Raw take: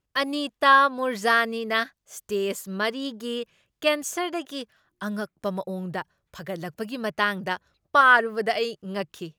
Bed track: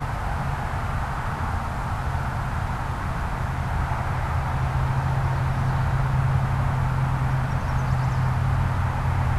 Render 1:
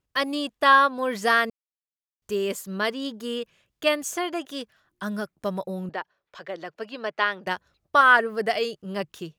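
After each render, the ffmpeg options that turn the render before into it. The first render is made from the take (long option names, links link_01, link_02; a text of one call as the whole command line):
ffmpeg -i in.wav -filter_complex "[0:a]asettb=1/sr,asplit=3[link_01][link_02][link_03];[link_01]atrim=end=5.894[link_04];[link_02]atrim=start=5.89:end=7.47,asetpts=PTS-STARTPTS,afade=type=in:duration=0.004:curve=qsin,afade=type=out:start_time=1.576:duration=0.004:curve=qsin,acrossover=split=300 5400:gain=0.1 1 0.0708[link_05][link_06][link_07];[link_05][link_06][link_07]amix=inputs=3:normalize=0[link_08];[link_03]atrim=start=7.466[link_09];[link_04][link_08]acrossfade=duration=0.004:curve1=hsin:curve2=qsin[link_10];[link_10][link_09]acrossfade=duration=0.004:curve1=qsin:curve2=hsin,asplit=3[link_11][link_12][link_13];[link_11]atrim=end=1.5,asetpts=PTS-STARTPTS,afade=type=out:start_time=1.496:duration=0.004:curve=hsin[link_14];[link_12]atrim=start=1.5:end=2.22,asetpts=PTS-STARTPTS,volume=0[link_15];[link_13]atrim=start=2.22,asetpts=PTS-STARTPTS,afade=type=in:duration=0.004:curve=hsin[link_16];[link_14][link_15][link_16]concat=n=3:v=0:a=1" out.wav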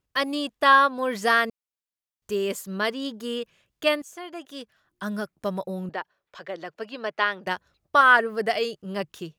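ffmpeg -i in.wav -filter_complex "[0:a]asplit=2[link_01][link_02];[link_01]atrim=end=4.02,asetpts=PTS-STARTPTS,afade=type=out:start_time=4.016:duration=0.004:curve=hsin:silence=0.149624[link_03];[link_02]atrim=start=4.02,asetpts=PTS-STARTPTS,afade=type=in:duration=1.08:silence=0.149624[link_04];[link_03][link_04]concat=n=2:v=0:a=1" out.wav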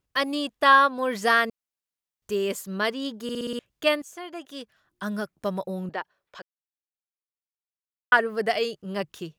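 ffmpeg -i in.wav -filter_complex "[0:a]asplit=9[link_01][link_02][link_03][link_04][link_05][link_06][link_07][link_08][link_09];[link_01]atrim=end=3.292[link_10];[link_02]atrim=start=3.228:end=3.292[link_11];[link_03]atrim=start=3.228:end=3.292[link_12];[link_04]atrim=start=3.228:end=3.292[link_13];[link_05]atrim=start=3.228:end=3.292[link_14];[link_06]atrim=start=3.228:end=3.292[link_15];[link_07]atrim=start=3.588:end=6.42,asetpts=PTS-STARTPTS,afade=type=out:start_time=2.828:duration=0.004:curve=hsin[link_16];[link_08]atrim=start=6.42:end=8.12,asetpts=PTS-STARTPTS,volume=0[link_17];[link_09]atrim=start=8.12,asetpts=PTS-STARTPTS,afade=type=in:duration=0.004:curve=hsin[link_18];[link_10][link_11]acrossfade=duration=0.004:curve1=hsin:curve2=hsin[link_19];[link_19][link_12]acrossfade=duration=0.004:curve1=hsin:curve2=hsin[link_20];[link_20][link_13]acrossfade=duration=0.004:curve1=hsin:curve2=hsin[link_21];[link_21][link_14]acrossfade=duration=0.004:curve1=hsin:curve2=hsin[link_22];[link_22][link_15]acrossfade=duration=0.004:curve1=hsin:curve2=hsin[link_23];[link_16][link_17][link_18]concat=n=3:v=0:a=1[link_24];[link_23][link_24]acrossfade=duration=0.004:curve1=hsin:curve2=hsin" out.wav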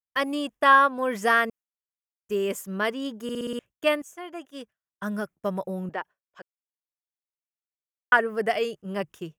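ffmpeg -i in.wav -af "agate=range=-33dB:threshold=-38dB:ratio=3:detection=peak,equalizer=frequency=4200:width_type=o:width=0.45:gain=-13.5" out.wav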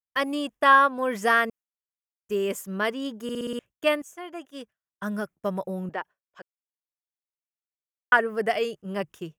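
ffmpeg -i in.wav -af anull out.wav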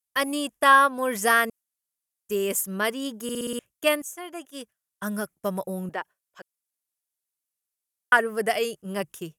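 ffmpeg -i in.wav -af "equalizer=frequency=11000:width=0.61:gain=15" out.wav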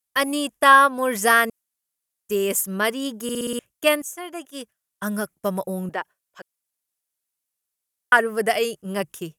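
ffmpeg -i in.wav -af "volume=3.5dB,alimiter=limit=-3dB:level=0:latency=1" out.wav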